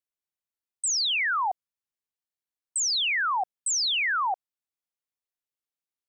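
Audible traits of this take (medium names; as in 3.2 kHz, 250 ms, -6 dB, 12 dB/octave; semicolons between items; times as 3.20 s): noise floor -94 dBFS; spectral tilt +1.0 dB/octave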